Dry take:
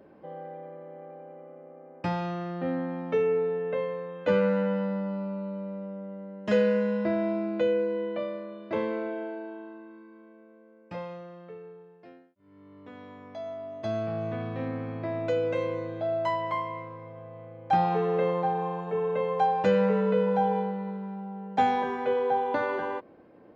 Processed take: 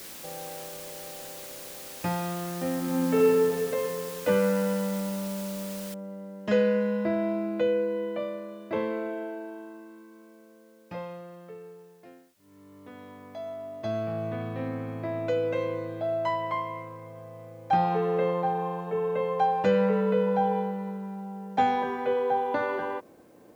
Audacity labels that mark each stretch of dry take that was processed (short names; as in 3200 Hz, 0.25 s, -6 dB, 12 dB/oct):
2.760000	3.460000	reverb throw, RT60 2.7 s, DRR -3 dB
5.940000	5.940000	noise floor step -43 dB -70 dB